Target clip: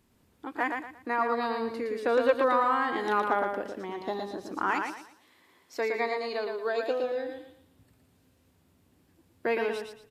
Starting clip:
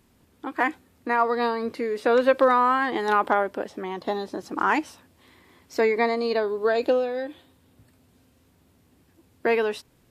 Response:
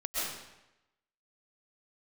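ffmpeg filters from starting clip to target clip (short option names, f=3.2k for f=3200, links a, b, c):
-filter_complex "[0:a]asettb=1/sr,asplit=3[a][b][c];[a]atrim=end=4.714[d];[b]atrim=start=4.71:end=7.04,asetpts=PTS-STARTPTS,afade=t=in:d=0.004:c=qsin,afade=t=out:st=2.326:d=0.004:c=qsin,highpass=f=470:p=1[e];[c]atrim=start=7.036[f];[d][e]acrossfade=d=0.004:c1=hsin:c2=qsin[g];[g][f]acrossfade=d=0.004:c1=qsin:c2=hsin,aecho=1:1:115|230|345|460:0.562|0.169|0.0506|0.0152,volume=-6dB"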